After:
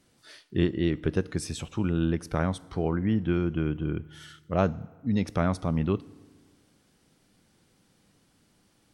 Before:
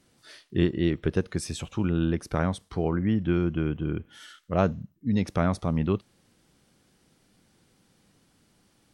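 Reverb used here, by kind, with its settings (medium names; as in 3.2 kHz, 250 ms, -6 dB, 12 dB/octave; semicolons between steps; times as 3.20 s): FDN reverb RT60 1.6 s, low-frequency decay 1.05×, high-frequency decay 0.65×, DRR 20 dB; trim -1 dB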